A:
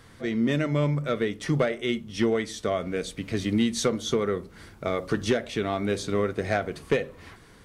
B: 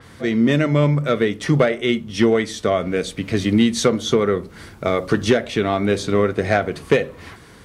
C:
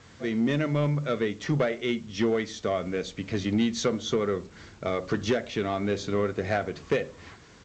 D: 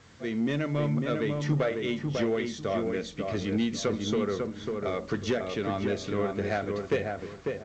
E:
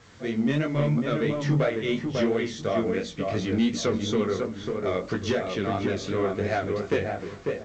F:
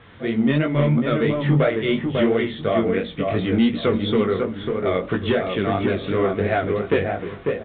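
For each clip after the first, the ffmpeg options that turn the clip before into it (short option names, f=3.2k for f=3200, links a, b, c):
-af "highpass=45,adynamicequalizer=threshold=0.00562:dfrequency=4500:dqfactor=0.7:tfrequency=4500:tqfactor=0.7:attack=5:release=100:ratio=0.375:range=2:mode=cutabove:tftype=highshelf,volume=8dB"
-af "aresample=16000,acrusher=bits=7:mix=0:aa=0.000001,aresample=44100,asoftclip=type=tanh:threshold=-6.5dB,volume=-8dB"
-filter_complex "[0:a]asplit=2[a][b];[b]adelay=547,lowpass=f=1.8k:p=1,volume=-3.5dB,asplit=2[c][d];[d]adelay=547,lowpass=f=1.8k:p=1,volume=0.26,asplit=2[e][f];[f]adelay=547,lowpass=f=1.8k:p=1,volume=0.26,asplit=2[g][h];[h]adelay=547,lowpass=f=1.8k:p=1,volume=0.26[i];[a][c][e][g][i]amix=inputs=5:normalize=0,volume=-3dB"
-af "flanger=delay=16.5:depth=5.8:speed=2.9,volume=6dB"
-af "aresample=8000,aresample=44100,volume=5.5dB"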